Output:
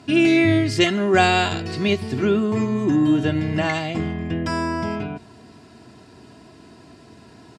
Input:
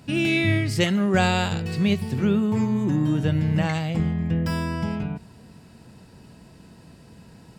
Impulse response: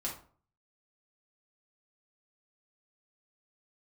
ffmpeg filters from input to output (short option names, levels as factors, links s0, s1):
-af "highpass=120,lowpass=7300,aecho=1:1:2.9:0.65,volume=1.58"